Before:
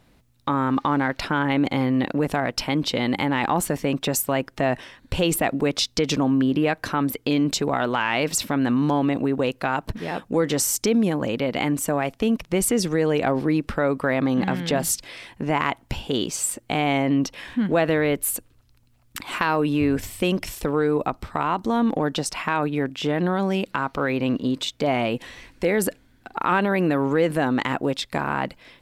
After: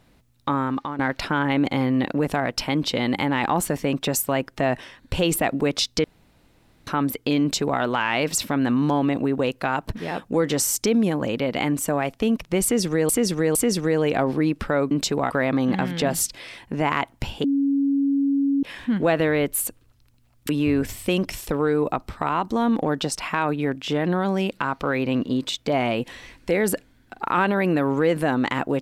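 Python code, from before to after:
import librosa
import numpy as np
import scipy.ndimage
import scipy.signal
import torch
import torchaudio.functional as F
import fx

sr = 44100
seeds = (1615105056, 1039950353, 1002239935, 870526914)

y = fx.edit(x, sr, fx.fade_out_to(start_s=0.52, length_s=0.47, floor_db=-13.0),
    fx.room_tone_fill(start_s=6.04, length_s=0.83),
    fx.duplicate(start_s=7.41, length_s=0.39, to_s=13.99),
    fx.repeat(start_s=12.63, length_s=0.46, count=3),
    fx.bleep(start_s=16.13, length_s=1.19, hz=278.0, db=-17.5),
    fx.cut(start_s=19.18, length_s=0.45), tone=tone)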